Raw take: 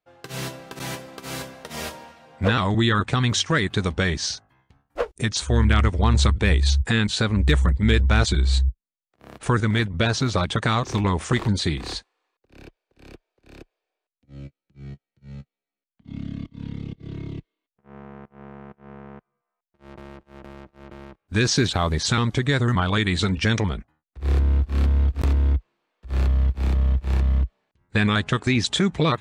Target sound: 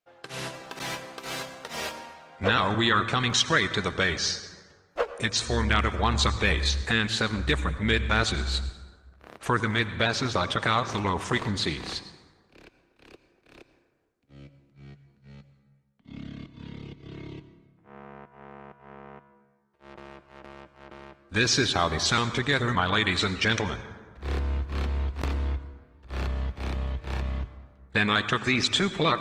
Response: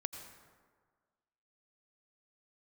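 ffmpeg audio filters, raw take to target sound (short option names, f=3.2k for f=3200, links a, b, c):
-filter_complex "[0:a]lowshelf=f=310:g=-11.5,asplit=2[a][b];[1:a]atrim=start_sample=2205,lowpass=7.8k[c];[b][c]afir=irnorm=-1:irlink=0,volume=1.5dB[d];[a][d]amix=inputs=2:normalize=0,volume=-5dB" -ar 48000 -c:a libopus -b:a 20k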